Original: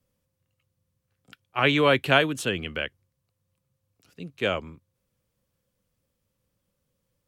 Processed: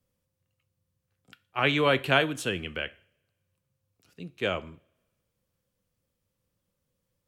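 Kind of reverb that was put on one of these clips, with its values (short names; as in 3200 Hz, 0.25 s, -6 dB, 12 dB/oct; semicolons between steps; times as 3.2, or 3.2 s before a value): two-slope reverb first 0.44 s, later 1.5 s, from -24 dB, DRR 14 dB; gain -3 dB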